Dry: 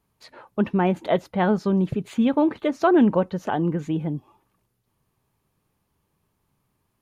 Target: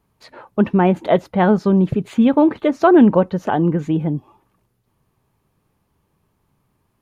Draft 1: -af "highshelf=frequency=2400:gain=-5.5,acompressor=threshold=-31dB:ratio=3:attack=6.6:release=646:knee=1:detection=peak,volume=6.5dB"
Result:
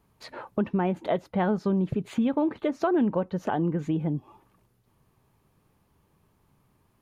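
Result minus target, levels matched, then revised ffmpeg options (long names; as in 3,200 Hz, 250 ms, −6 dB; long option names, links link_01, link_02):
downward compressor: peak gain reduction +13.5 dB
-af "highshelf=frequency=2400:gain=-5.5,volume=6.5dB"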